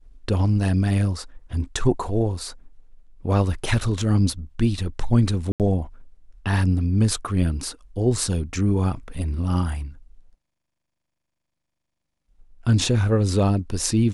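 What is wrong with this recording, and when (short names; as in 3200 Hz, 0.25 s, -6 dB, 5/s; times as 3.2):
5.52–5.6 gap 78 ms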